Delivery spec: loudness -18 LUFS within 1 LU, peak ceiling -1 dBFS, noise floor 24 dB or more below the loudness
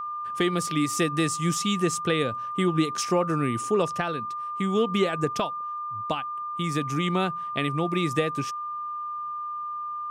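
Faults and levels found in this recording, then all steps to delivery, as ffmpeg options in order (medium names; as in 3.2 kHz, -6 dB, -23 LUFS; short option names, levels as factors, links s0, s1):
steady tone 1.2 kHz; tone level -30 dBFS; loudness -27.0 LUFS; peak level -11.5 dBFS; loudness target -18.0 LUFS
-> -af "bandreject=f=1200:w=30"
-af "volume=2.82"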